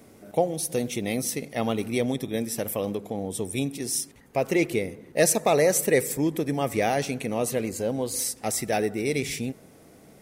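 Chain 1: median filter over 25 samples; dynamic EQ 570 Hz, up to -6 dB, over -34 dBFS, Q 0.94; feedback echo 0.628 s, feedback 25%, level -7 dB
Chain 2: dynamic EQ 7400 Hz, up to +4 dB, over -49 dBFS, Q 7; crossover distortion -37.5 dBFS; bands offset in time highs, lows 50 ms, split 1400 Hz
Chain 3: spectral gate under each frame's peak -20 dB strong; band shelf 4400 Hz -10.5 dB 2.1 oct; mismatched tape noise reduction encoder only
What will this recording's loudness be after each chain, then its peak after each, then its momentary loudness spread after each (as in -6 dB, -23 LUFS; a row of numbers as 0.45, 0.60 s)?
-31.0, -28.0, -27.5 LUFS; -14.5, -7.0, -9.5 dBFS; 8, 10, 9 LU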